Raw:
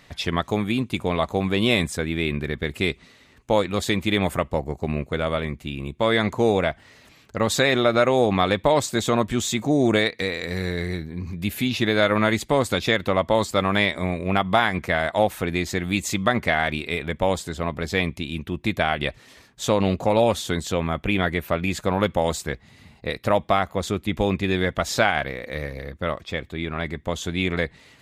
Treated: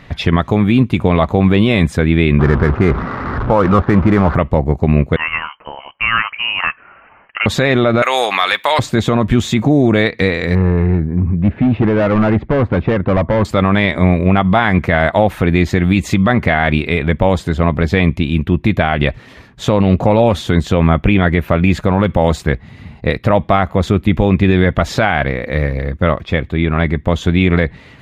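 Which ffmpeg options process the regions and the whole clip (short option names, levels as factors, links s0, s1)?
-filter_complex "[0:a]asettb=1/sr,asplit=3[s0][s1][s2];[s0]atrim=end=2.394[s3];[s1]atrim=start=2.39:end=4.35,asetpts=PTS-STARTPTS,afade=t=in:d=0.004:c=qsin,afade=t=out:st=1.956:d=0.004:c=qsin,aeval=exprs='val(0)+0.5*0.0398*sgn(val(0))':c=same,lowpass=f=1300:t=q:w=3.4,adynamicsmooth=sensitivity=4:basefreq=630[s4];[s2]atrim=start=4.346[s5];[s3][s4]acrossfade=d=0.004:c1=hsin:c2=qsin[s6];[s6][s5]acrossfade=d=0.004:c1=qsin:c2=hsin,asettb=1/sr,asplit=3[s7][s8][s9];[s7]atrim=end=5.164[s10];[s8]atrim=start=5.16:end=7.46,asetpts=PTS-STARTPTS,afade=t=in:d=0.004:c=qsin,afade=t=out:st=2.296:d=0.004:c=qsin,highpass=750,lowpass=f=2800:t=q:w=0.5098,lowpass=f=2800:t=q:w=0.6013,lowpass=f=2800:t=q:w=0.9,lowpass=f=2800:t=q:w=2.563,afreqshift=-3300[s11];[s9]atrim=start=7.456[s12];[s10][s11]acrossfade=d=0.004:c1=hsin:c2=qsin[s13];[s13][s12]acrossfade=d=0.004:c1=qsin:c2=hsin,asettb=1/sr,asplit=3[s14][s15][s16];[s14]atrim=end=8.024[s17];[s15]atrim=start=8.02:end=8.79,asetpts=PTS-STARTPTS,afade=t=in:d=0.004:c=qsin,afade=t=out:st=0.766:d=0.004:c=qsin,highpass=1300,aemphasis=mode=production:type=50fm,acontrast=82[s18];[s16]atrim=start=8.786[s19];[s17][s18]acrossfade=d=0.004:c1=hsin:c2=qsin[s20];[s20][s19]acrossfade=d=0.004:c1=qsin:c2=hsin,asettb=1/sr,asplit=3[s21][s22][s23];[s21]atrim=end=10.554[s24];[s22]atrim=start=10.55:end=13.45,asetpts=PTS-STARTPTS,afade=t=in:d=0.004:c=qsin,afade=t=out:st=2.896:d=0.004:c=qsin,lowpass=1400,asoftclip=type=hard:threshold=0.0708,aemphasis=mode=reproduction:type=50fm[s25];[s23]atrim=start=13.446[s26];[s24][s25]acrossfade=d=0.004:c1=hsin:c2=qsin[s27];[s27][s26]acrossfade=d=0.004:c1=qsin:c2=hsin,bass=f=250:g=6,treble=f=4000:g=-14,bandreject=f=7900:w=26,alimiter=level_in=3.98:limit=0.891:release=50:level=0:latency=1,volume=0.891"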